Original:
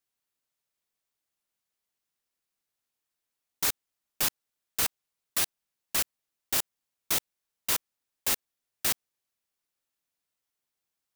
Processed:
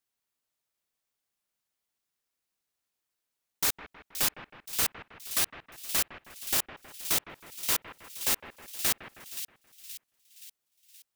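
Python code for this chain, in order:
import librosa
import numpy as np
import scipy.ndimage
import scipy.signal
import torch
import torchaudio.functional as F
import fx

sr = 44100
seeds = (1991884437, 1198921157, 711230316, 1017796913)

y = fx.echo_split(x, sr, split_hz=2500.0, low_ms=159, high_ms=524, feedback_pct=52, wet_db=-10.5)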